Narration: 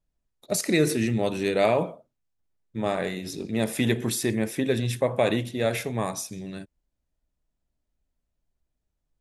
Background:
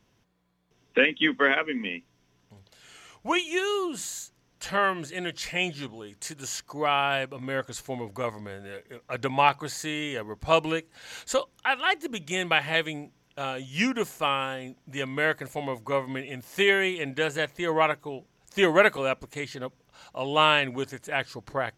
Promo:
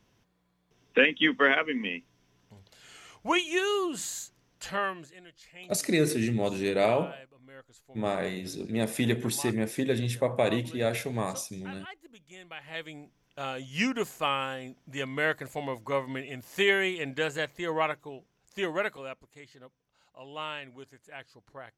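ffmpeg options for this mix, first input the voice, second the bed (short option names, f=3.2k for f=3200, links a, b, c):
-filter_complex "[0:a]adelay=5200,volume=-3dB[a];[1:a]volume=17.5dB,afade=t=out:st=4.39:d=0.82:silence=0.1,afade=t=in:st=12.56:d=1.01:silence=0.125893,afade=t=out:st=17.1:d=2.2:silence=0.199526[b];[a][b]amix=inputs=2:normalize=0"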